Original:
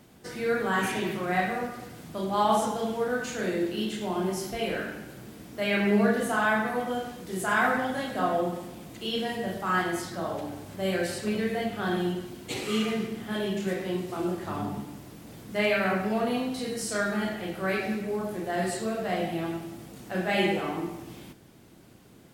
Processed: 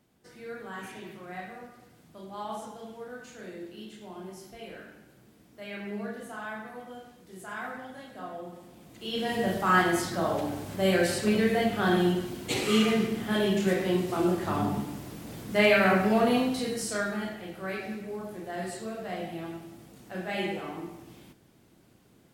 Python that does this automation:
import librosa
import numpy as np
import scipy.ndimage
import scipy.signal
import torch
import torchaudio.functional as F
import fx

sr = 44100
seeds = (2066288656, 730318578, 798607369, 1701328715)

y = fx.gain(x, sr, db=fx.line((8.41, -13.5), (8.96, -7.0), (9.4, 4.0), (16.39, 4.0), (17.43, -6.5)))